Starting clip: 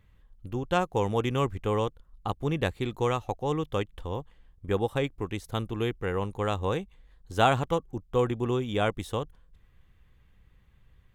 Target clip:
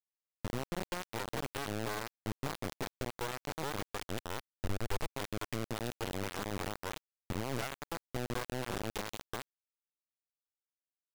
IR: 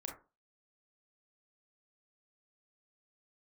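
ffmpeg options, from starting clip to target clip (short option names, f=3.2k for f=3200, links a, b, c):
-filter_complex "[0:a]asettb=1/sr,asplit=3[a][b][c];[a]atrim=end=0.664[d];[b]atrim=start=0.66:end=1.72,asetpts=PTS-STARTPTS,afade=t=in:d=0.004:c=qsin,afade=t=out:st=1.056:d=0.004:c=qsin,highpass=f=65:w=0.5412,highpass=f=65:w=1.3066[e];[c]atrim=start=1.716[f];[d][e]acrossfade=d=0.004:c1=hsin:c2=qsin[g];[g][f]acrossfade=d=0.004:c1=qsin:c2=hsin,asettb=1/sr,asplit=3[h][i][j];[h]atrim=end=2.684[k];[i]atrim=start=2.68:end=3.22,asetpts=PTS-STARTPTS,afade=t=in:d=0.004:c=qsin,afade=t=out:st=0.536:d=0.004:c=qsin,acrossover=split=190[l][m];[l]acompressor=threshold=-36dB:ratio=6[n];[n][m]amix=inputs=2:normalize=0[o];[j]atrim=start=3.216[p];[k][o]acrossfade=d=0.004:c1=hsin:c2=qsin[q];[q][p]acrossfade=d=0.004:c1=qsin:c2=hsin,lowpass=f=5.2k:w=0.5412,lowpass=f=5.2k:w=1.3066,acrossover=split=330|4000[r][s][t];[s]adelay=200[u];[t]adelay=290[v];[r][u][v]amix=inputs=3:normalize=0,acompressor=threshold=-41dB:ratio=10,aeval=exprs='(tanh(79.4*val(0)+0.8)-tanh(0.8))/79.4':c=same,acrusher=bits=6:mix=0:aa=0.000001,asettb=1/sr,asplit=3[w][x][y];[w]atrim=end=3.954[z];[x]atrim=start=3.95:end=5.11,asetpts=PTS-STARTPTS,afade=t=in:d=0.004:c=qsin,afade=t=out:st=1.156:d=0.004:c=qsin,asubboost=boost=9.5:cutoff=95[aa];[y]atrim=start=5.106[ab];[z][aa]acrossfade=d=0.004:c1=hsin:c2=qsin[ac];[ac][ab]acrossfade=d=0.004:c1=qsin:c2=hsin,volume=9dB"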